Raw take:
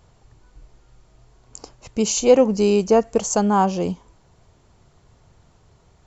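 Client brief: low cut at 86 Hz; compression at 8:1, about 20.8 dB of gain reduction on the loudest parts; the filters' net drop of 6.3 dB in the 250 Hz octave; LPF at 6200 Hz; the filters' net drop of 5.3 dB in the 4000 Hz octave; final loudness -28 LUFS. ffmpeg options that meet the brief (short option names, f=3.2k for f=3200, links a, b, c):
-af "highpass=86,lowpass=6.2k,equalizer=f=250:t=o:g=-8,equalizer=f=4k:t=o:g=-6.5,acompressor=threshold=-32dB:ratio=8,volume=8.5dB"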